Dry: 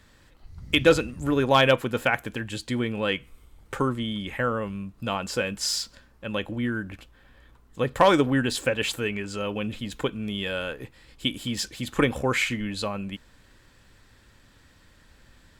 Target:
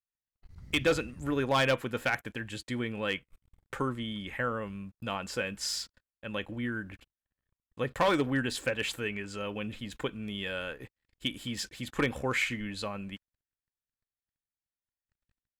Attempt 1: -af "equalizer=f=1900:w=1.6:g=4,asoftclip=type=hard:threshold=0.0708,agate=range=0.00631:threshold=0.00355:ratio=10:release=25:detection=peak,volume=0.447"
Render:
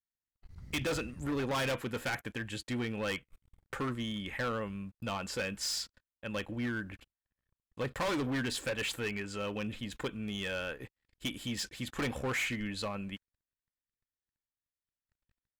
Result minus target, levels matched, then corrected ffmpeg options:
hard clipper: distortion +11 dB
-af "equalizer=f=1900:w=1.6:g=4,asoftclip=type=hard:threshold=0.224,agate=range=0.00631:threshold=0.00355:ratio=10:release=25:detection=peak,volume=0.447"

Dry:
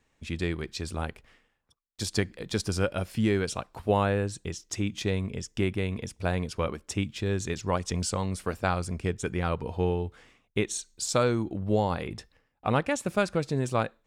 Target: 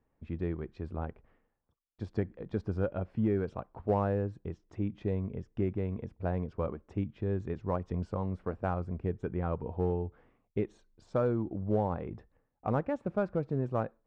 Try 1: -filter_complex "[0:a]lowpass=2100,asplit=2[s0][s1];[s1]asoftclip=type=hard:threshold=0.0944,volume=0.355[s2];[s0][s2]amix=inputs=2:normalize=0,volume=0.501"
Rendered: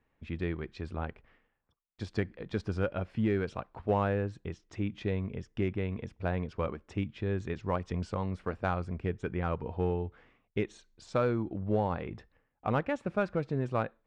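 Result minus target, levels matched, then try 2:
2 kHz band +7.5 dB
-filter_complex "[0:a]lowpass=1000,asplit=2[s0][s1];[s1]asoftclip=type=hard:threshold=0.0944,volume=0.355[s2];[s0][s2]amix=inputs=2:normalize=0,volume=0.501"

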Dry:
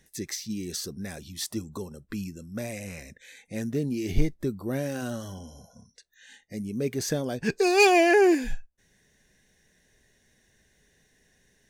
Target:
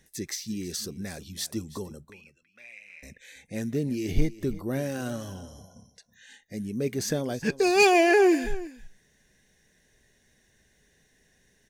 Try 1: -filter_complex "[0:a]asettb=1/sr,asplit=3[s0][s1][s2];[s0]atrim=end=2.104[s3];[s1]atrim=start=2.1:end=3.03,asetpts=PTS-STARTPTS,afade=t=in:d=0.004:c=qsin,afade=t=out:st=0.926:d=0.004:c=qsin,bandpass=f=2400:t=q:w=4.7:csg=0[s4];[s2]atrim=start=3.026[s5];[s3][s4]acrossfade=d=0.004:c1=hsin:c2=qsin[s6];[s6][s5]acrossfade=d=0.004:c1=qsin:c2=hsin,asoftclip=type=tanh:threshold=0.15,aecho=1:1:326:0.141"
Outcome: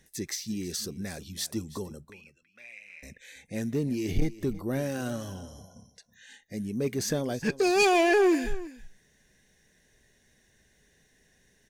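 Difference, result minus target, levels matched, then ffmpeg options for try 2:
saturation: distortion +18 dB
-filter_complex "[0:a]asettb=1/sr,asplit=3[s0][s1][s2];[s0]atrim=end=2.104[s3];[s1]atrim=start=2.1:end=3.03,asetpts=PTS-STARTPTS,afade=t=in:d=0.004:c=qsin,afade=t=out:st=0.926:d=0.004:c=qsin,bandpass=f=2400:t=q:w=4.7:csg=0[s4];[s2]atrim=start=3.026[s5];[s3][s4]acrossfade=d=0.004:c1=hsin:c2=qsin[s6];[s6][s5]acrossfade=d=0.004:c1=qsin:c2=hsin,asoftclip=type=tanh:threshold=0.562,aecho=1:1:326:0.141"

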